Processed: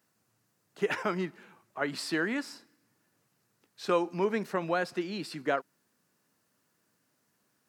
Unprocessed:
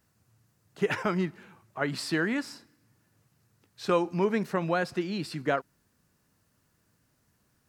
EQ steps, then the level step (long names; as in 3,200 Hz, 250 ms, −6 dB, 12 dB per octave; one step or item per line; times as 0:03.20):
high-pass filter 220 Hz 12 dB per octave
−1.5 dB